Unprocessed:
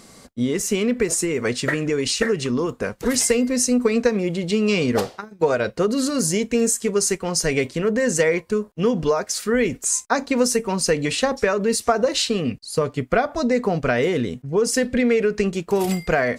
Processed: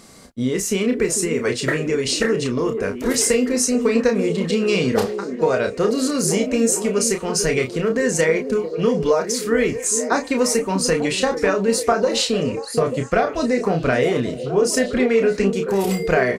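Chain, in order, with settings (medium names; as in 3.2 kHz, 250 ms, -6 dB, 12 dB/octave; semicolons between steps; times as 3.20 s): doubling 31 ms -6 dB; repeats whose band climbs or falls 445 ms, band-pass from 320 Hz, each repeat 0.7 oct, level -6 dB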